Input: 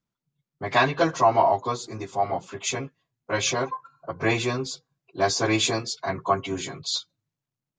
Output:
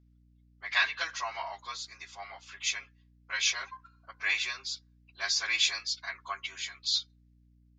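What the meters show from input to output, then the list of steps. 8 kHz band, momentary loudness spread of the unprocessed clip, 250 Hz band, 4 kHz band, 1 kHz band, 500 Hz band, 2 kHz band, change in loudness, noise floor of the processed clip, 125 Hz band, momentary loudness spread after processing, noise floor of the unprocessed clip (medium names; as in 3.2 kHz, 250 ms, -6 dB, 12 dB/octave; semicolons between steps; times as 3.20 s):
-4.5 dB, 13 LU, under -30 dB, -0.5 dB, -16.0 dB, -24.5 dB, -1.5 dB, -6.0 dB, -63 dBFS, under -25 dB, 17 LU, under -85 dBFS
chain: Chebyshev band-pass 1.8–5.5 kHz, order 2; hum 60 Hz, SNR 27 dB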